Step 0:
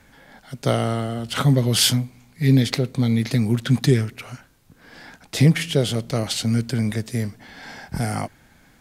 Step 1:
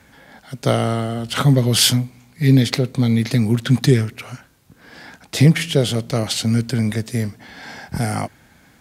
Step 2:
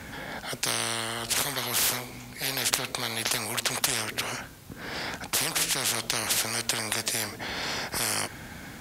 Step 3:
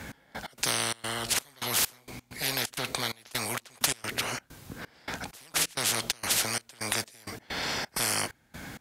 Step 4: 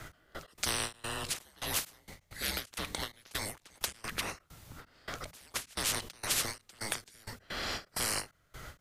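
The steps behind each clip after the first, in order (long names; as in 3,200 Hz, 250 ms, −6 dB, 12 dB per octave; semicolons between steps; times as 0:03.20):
high-pass filter 51 Hz; level +3 dB
every bin compressed towards the loudest bin 10 to 1; level −3 dB
gate pattern "x..x.xxx.xxx..x" 130 BPM −24 dB
frequency shifter −210 Hz; every ending faded ahead of time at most 260 dB per second; level −4.5 dB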